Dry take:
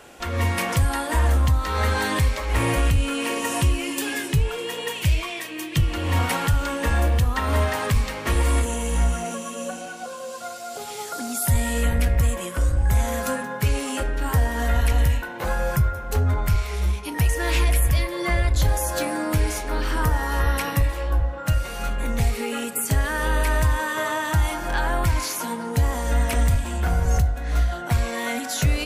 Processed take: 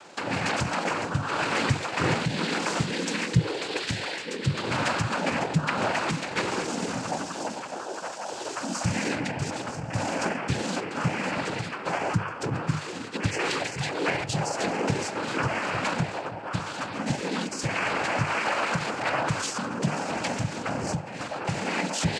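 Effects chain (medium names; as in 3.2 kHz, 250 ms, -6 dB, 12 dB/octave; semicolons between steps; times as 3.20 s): noise-vocoded speech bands 8; hum notches 50/100/150/200/250/300/350/400/450 Hz; tempo 1.3×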